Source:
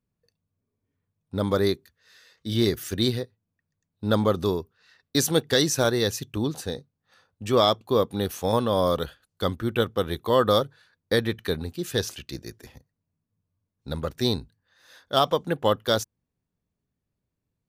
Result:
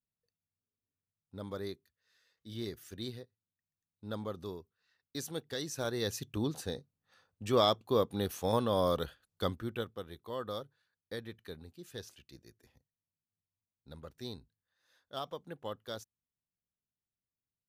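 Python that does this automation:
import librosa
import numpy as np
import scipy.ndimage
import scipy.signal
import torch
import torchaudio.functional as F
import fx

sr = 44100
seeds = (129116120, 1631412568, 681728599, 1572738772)

y = fx.gain(x, sr, db=fx.line((5.61, -17.5), (6.23, -7.0), (9.43, -7.0), (10.07, -19.0)))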